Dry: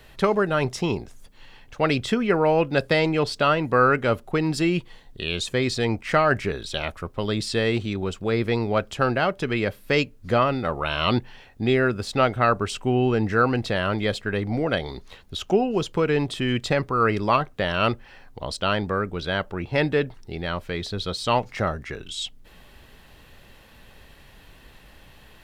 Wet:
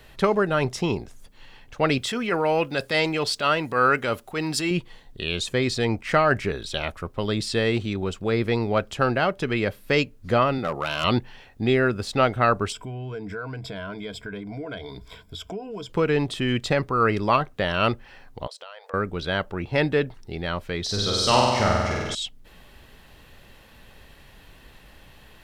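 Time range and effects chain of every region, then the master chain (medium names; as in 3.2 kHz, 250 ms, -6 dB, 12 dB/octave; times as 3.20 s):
1.98–4.71 s: transient shaper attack -7 dB, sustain +1 dB + tilt EQ +2 dB/octave
10.58–11.04 s: high-pass 110 Hz + overload inside the chain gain 18 dB
12.72–15.90 s: rippled EQ curve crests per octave 1.7, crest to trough 14 dB + compression 3:1, threshold -35 dBFS
18.47–18.94 s: brick-wall FIR high-pass 440 Hz + compression, threshold -39 dBFS
20.84–22.15 s: peaking EQ 5.7 kHz +10 dB 0.64 oct + flutter echo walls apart 8.2 m, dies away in 1.5 s
whole clip: none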